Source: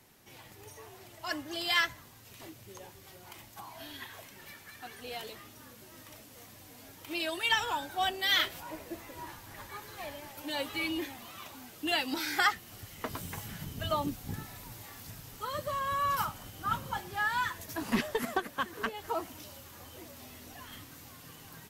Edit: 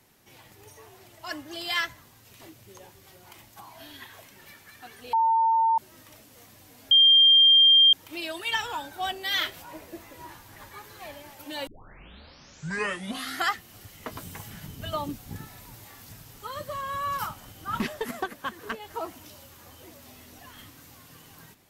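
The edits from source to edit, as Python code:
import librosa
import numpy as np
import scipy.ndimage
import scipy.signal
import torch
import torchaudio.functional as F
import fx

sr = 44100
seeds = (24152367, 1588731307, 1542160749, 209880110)

y = fx.edit(x, sr, fx.bleep(start_s=5.13, length_s=0.65, hz=903.0, db=-18.5),
    fx.insert_tone(at_s=6.91, length_s=1.02, hz=3190.0, db=-13.0),
    fx.tape_start(start_s=10.65, length_s=1.87),
    fx.cut(start_s=16.78, length_s=1.16), tone=tone)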